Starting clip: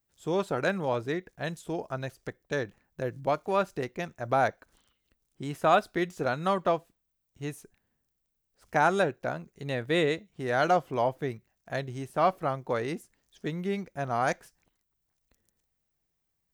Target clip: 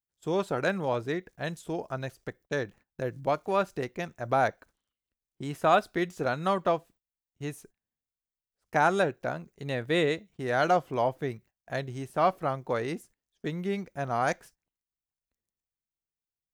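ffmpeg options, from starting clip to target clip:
ffmpeg -i in.wav -af "agate=range=-18dB:threshold=-53dB:ratio=16:detection=peak" out.wav

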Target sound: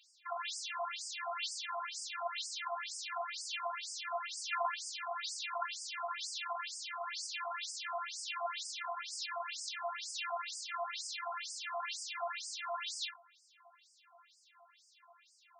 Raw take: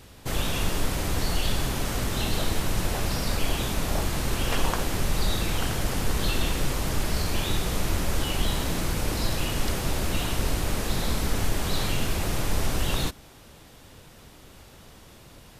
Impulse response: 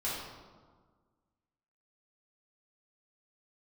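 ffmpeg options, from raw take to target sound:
-filter_complex "[0:a]tiltshelf=frequency=670:gain=8.5,bandreject=frequency=50:width_type=h:width=6,bandreject=frequency=100:width_type=h:width=6,bandreject=frequency=150:width_type=h:width=6,asplit=2[link_01][link_02];[link_02]acrusher=bits=4:mix=0:aa=0.000001,volume=-8dB[link_03];[link_01][link_03]amix=inputs=2:normalize=0,afftfilt=real='hypot(re,im)*cos(PI*b)':imag='0':win_size=512:overlap=0.75,afftfilt=real='re*between(b*sr/1024,920*pow(6700/920,0.5+0.5*sin(2*PI*2.1*pts/sr))/1.41,920*pow(6700/920,0.5+0.5*sin(2*PI*2.1*pts/sr))*1.41)':imag='im*between(b*sr/1024,920*pow(6700/920,0.5+0.5*sin(2*PI*2.1*pts/sr))/1.41,920*pow(6700/920,0.5+0.5*sin(2*PI*2.1*pts/sr))*1.41)':win_size=1024:overlap=0.75,volume=4.5dB"

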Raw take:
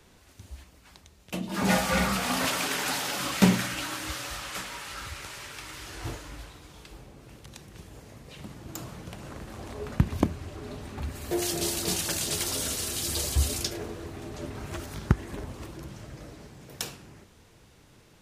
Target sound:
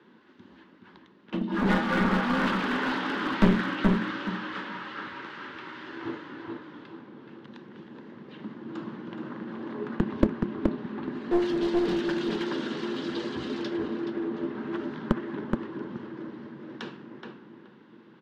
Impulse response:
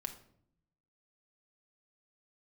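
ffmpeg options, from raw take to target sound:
-filter_complex "[0:a]highpass=frequency=160:width=0.5412,highpass=frequency=160:width=1.3066,equalizer=frequency=230:width_type=q:width=4:gain=9,equalizer=frequency=340:width_type=q:width=4:gain=9,equalizer=frequency=680:width_type=q:width=4:gain=-9,equalizer=frequency=980:width_type=q:width=4:gain=5,equalizer=frequency=1600:width_type=q:width=4:gain=5,equalizer=frequency=2400:width_type=q:width=4:gain=-7,lowpass=frequency=3300:width=0.5412,lowpass=frequency=3300:width=1.3066,asplit=2[link_01][link_02];[link_02]adelay=424,lowpass=frequency=1900:poles=1,volume=-3dB,asplit=2[link_03][link_04];[link_04]adelay=424,lowpass=frequency=1900:poles=1,volume=0.22,asplit=2[link_05][link_06];[link_06]adelay=424,lowpass=frequency=1900:poles=1,volume=0.22[link_07];[link_01][link_03][link_05][link_07]amix=inputs=4:normalize=0,asplit=2[link_08][link_09];[1:a]atrim=start_sample=2205[link_10];[link_09][link_10]afir=irnorm=-1:irlink=0,volume=-15dB[link_11];[link_08][link_11]amix=inputs=2:normalize=0,aeval=exprs='clip(val(0),-1,0.075)':channel_layout=same,volume=-1.5dB"

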